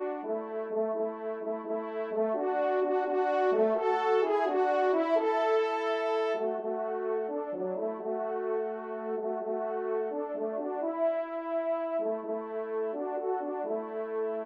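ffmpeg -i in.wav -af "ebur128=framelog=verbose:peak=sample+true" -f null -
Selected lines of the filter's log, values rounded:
Integrated loudness:
  I:         -30.9 LUFS
  Threshold: -40.9 LUFS
Loudness range:
  LRA:         5.9 LU
  Threshold: -50.5 LUFS
  LRA low:   -33.5 LUFS
  LRA high:  -27.5 LUFS
Sample peak:
  Peak:      -15.7 dBFS
True peak:
  Peak:      -15.7 dBFS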